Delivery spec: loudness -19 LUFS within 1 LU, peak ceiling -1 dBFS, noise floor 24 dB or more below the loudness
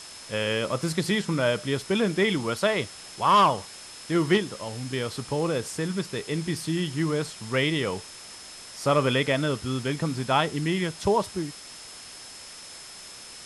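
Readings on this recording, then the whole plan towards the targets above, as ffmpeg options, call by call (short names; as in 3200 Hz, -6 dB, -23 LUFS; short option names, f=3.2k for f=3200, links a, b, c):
steady tone 5200 Hz; tone level -46 dBFS; noise floor -44 dBFS; noise floor target -50 dBFS; loudness -26.0 LUFS; peak -8.5 dBFS; loudness target -19.0 LUFS
-> -af "bandreject=f=5.2k:w=30"
-af "afftdn=nr=6:nf=-44"
-af "volume=7dB"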